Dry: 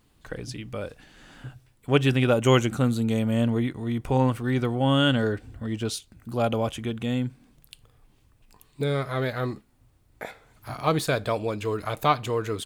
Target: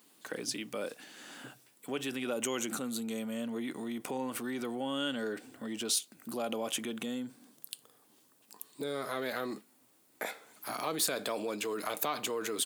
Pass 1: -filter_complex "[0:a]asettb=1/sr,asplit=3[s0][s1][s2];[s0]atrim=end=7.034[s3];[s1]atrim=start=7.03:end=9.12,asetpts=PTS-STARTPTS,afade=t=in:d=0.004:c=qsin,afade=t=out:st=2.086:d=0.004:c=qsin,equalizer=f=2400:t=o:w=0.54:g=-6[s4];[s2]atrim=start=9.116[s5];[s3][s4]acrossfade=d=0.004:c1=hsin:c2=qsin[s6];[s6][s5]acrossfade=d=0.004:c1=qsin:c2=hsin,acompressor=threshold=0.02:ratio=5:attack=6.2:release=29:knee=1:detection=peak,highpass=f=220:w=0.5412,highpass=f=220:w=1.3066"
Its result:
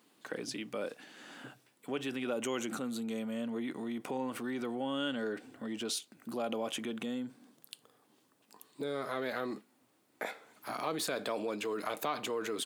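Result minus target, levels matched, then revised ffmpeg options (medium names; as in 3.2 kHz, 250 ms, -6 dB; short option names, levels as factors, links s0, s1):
8 kHz band -6.0 dB
-filter_complex "[0:a]asettb=1/sr,asplit=3[s0][s1][s2];[s0]atrim=end=7.034[s3];[s1]atrim=start=7.03:end=9.12,asetpts=PTS-STARTPTS,afade=t=in:d=0.004:c=qsin,afade=t=out:st=2.086:d=0.004:c=qsin,equalizer=f=2400:t=o:w=0.54:g=-6[s4];[s2]atrim=start=9.116[s5];[s3][s4]acrossfade=d=0.004:c1=hsin:c2=qsin[s6];[s6][s5]acrossfade=d=0.004:c1=qsin:c2=hsin,acompressor=threshold=0.02:ratio=5:attack=6.2:release=29:knee=1:detection=peak,highpass=f=220:w=0.5412,highpass=f=220:w=1.3066,highshelf=f=5600:g=11.5"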